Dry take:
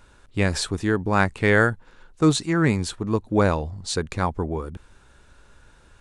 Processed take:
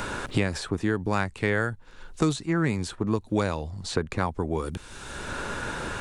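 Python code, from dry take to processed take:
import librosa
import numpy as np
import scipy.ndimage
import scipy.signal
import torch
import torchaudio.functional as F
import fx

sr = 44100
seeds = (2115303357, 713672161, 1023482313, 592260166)

y = fx.band_squash(x, sr, depth_pct=100)
y = F.gain(torch.from_numpy(y), -5.0).numpy()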